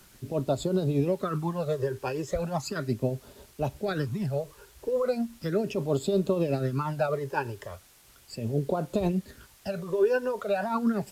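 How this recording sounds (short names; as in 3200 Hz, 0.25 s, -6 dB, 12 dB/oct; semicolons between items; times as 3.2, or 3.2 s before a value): phasing stages 12, 0.37 Hz, lowest notch 210–2000 Hz; tremolo triangle 8.3 Hz, depth 65%; a quantiser's noise floor 10-bit, dither triangular; Vorbis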